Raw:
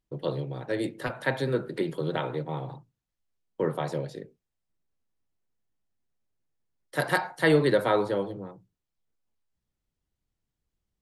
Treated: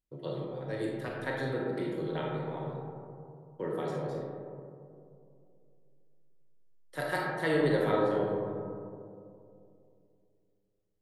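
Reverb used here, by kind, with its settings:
comb and all-pass reverb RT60 2.6 s, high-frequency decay 0.25×, pre-delay 0 ms, DRR −2.5 dB
level −9.5 dB

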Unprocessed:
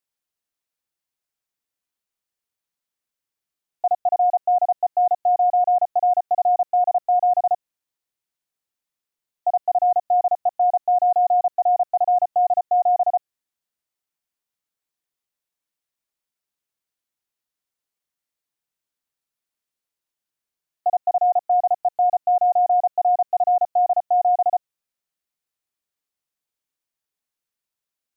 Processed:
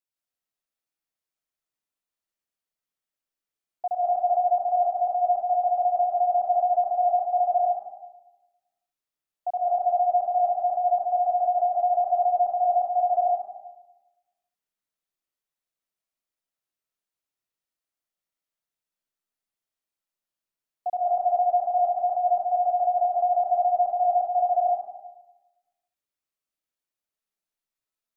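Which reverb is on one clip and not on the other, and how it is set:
comb and all-pass reverb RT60 1.1 s, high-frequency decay 0.4×, pre-delay 100 ms, DRR −3.5 dB
level −8.5 dB

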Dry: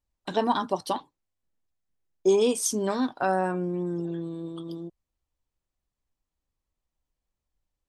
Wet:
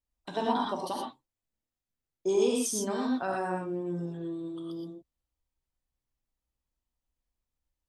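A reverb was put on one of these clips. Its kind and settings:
reverb whose tail is shaped and stops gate 140 ms rising, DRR −1 dB
level −7.5 dB

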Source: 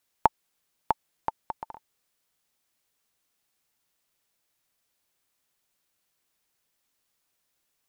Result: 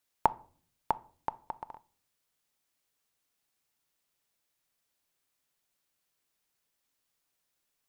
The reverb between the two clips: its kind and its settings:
rectangular room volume 460 cubic metres, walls furnished, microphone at 0.31 metres
level −4 dB

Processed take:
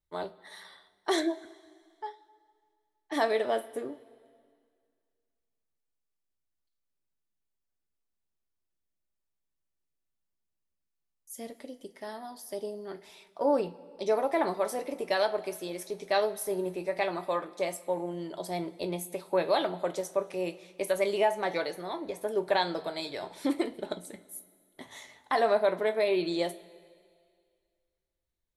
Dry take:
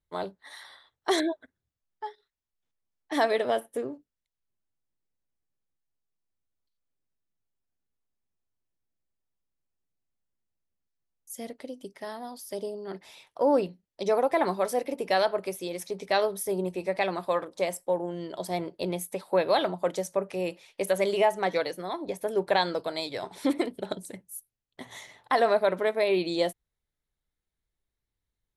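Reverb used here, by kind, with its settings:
coupled-rooms reverb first 0.21 s, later 2.1 s, from −21 dB, DRR 6.5 dB
level −3.5 dB

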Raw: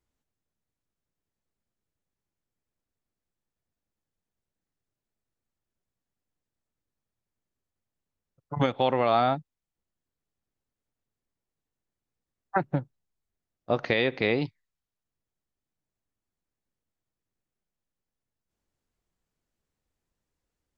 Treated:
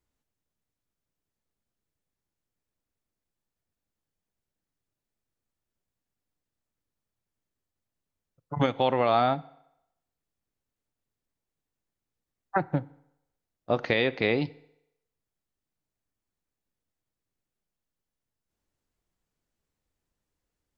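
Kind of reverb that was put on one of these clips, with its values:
feedback delay network reverb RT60 0.84 s, low-frequency decay 0.75×, high-frequency decay 0.9×, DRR 18.5 dB

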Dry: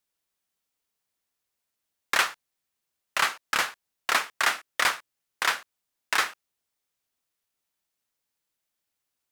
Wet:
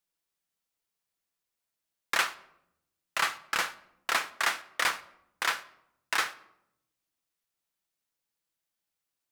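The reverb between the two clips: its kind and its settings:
rectangular room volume 2,300 cubic metres, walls furnished, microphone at 0.73 metres
level −4 dB

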